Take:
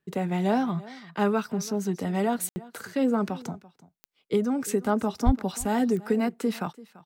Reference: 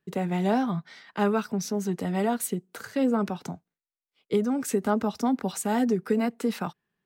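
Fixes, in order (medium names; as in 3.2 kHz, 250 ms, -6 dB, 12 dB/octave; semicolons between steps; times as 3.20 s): de-click; 5.25–5.37 s: high-pass 140 Hz 24 dB/octave; room tone fill 2.49–2.56 s; inverse comb 338 ms -20 dB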